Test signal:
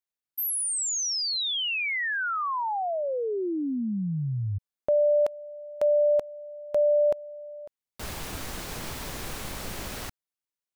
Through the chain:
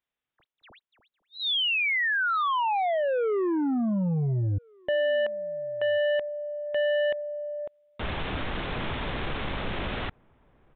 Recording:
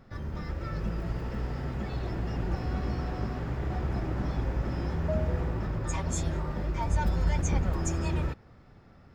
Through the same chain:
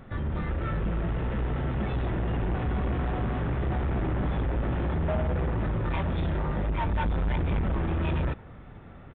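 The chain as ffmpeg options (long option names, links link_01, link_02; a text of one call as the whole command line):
ffmpeg -i in.wav -filter_complex "[0:a]asoftclip=type=tanh:threshold=-31.5dB,aresample=8000,aresample=44100,asplit=2[link_01][link_02];[link_02]adelay=1399,volume=-29dB,highshelf=frequency=4000:gain=-31.5[link_03];[link_01][link_03]amix=inputs=2:normalize=0,volume=8dB" out.wav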